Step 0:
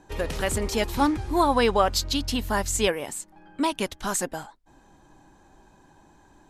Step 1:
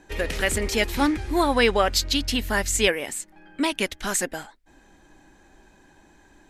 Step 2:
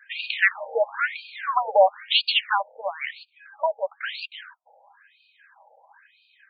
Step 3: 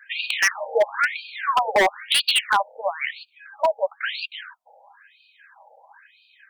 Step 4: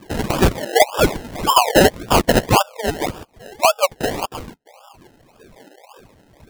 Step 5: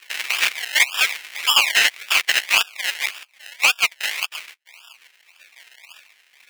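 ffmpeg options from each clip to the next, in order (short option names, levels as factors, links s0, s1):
-af "equalizer=f=125:t=o:w=1:g=-7,equalizer=f=1000:t=o:w=1:g=-7,equalizer=f=2000:t=o:w=1:g=7,volume=1.33"
-af "afftfilt=real='re*between(b*sr/1024,630*pow(3400/630,0.5+0.5*sin(2*PI*1*pts/sr))/1.41,630*pow(3400/630,0.5+0.5*sin(2*PI*1*pts/sr))*1.41)':imag='im*between(b*sr/1024,630*pow(3400/630,0.5+0.5*sin(2*PI*1*pts/sr))/1.41,630*pow(3400/630,0.5+0.5*sin(2*PI*1*pts/sr))*1.41)':win_size=1024:overlap=0.75,volume=2.51"
-af "aeval=exprs='0.188*(abs(mod(val(0)/0.188+3,4)-2)-1)':c=same,volume=1.58"
-af "acrusher=samples=30:mix=1:aa=0.000001:lfo=1:lforange=18:lforate=1.8,volume=2"
-af "aeval=exprs='val(0)*sin(2*PI*130*n/s)':c=same,highpass=f=2300:t=q:w=2.8,aeval=exprs='1.06*sin(PI/2*2.51*val(0)/1.06)':c=same,volume=0.473"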